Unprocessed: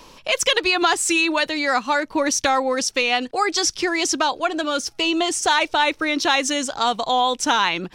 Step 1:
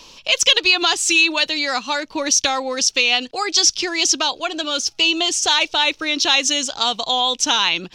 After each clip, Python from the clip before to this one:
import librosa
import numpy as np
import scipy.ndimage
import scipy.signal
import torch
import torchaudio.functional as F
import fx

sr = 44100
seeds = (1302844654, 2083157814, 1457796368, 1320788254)

y = fx.band_shelf(x, sr, hz=4200.0, db=10.0, octaves=1.7)
y = F.gain(torch.from_numpy(y), -3.0).numpy()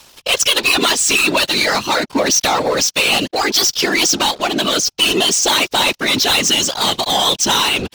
y = fx.leveller(x, sr, passes=5)
y = fx.whisperise(y, sr, seeds[0])
y = F.gain(torch.from_numpy(y), -9.0).numpy()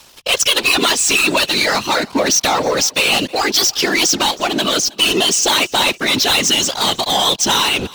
y = fx.echo_feedback(x, sr, ms=319, feedback_pct=32, wet_db=-23)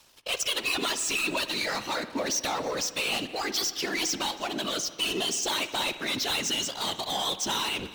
y = fx.comb_fb(x, sr, f0_hz=320.0, decay_s=1.0, harmonics='all', damping=0.0, mix_pct=50)
y = fx.rev_spring(y, sr, rt60_s=1.4, pass_ms=(52,), chirp_ms=30, drr_db=12.0)
y = F.gain(torch.from_numpy(y), -8.5).numpy()